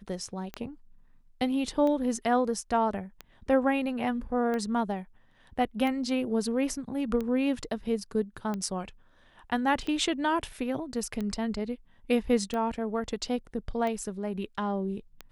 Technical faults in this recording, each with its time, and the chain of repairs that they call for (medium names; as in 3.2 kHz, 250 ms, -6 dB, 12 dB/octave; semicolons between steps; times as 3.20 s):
tick 45 rpm -21 dBFS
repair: de-click